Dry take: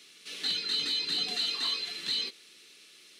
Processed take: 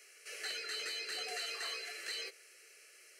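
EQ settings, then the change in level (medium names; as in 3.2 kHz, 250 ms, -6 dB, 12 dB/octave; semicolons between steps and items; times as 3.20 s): ladder high-pass 320 Hz, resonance 20%; static phaser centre 980 Hz, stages 6; +6.5 dB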